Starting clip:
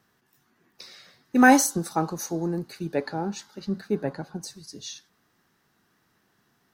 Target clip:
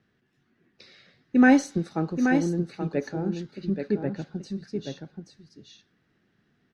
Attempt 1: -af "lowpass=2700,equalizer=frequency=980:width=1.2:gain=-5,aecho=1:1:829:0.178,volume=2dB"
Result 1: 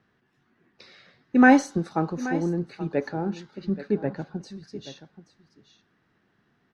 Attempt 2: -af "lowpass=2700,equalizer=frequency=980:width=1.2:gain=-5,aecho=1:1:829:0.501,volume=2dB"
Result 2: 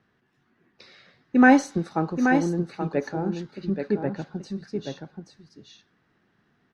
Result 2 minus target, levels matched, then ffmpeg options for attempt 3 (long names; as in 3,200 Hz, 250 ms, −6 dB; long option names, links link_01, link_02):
1,000 Hz band +4.5 dB
-af "lowpass=2700,equalizer=frequency=980:width=1.2:gain=-13.5,aecho=1:1:829:0.501,volume=2dB"